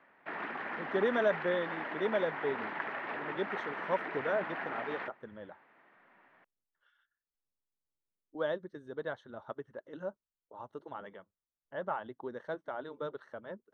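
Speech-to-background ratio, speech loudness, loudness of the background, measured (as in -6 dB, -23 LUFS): 1.5 dB, -37.5 LUFS, -39.0 LUFS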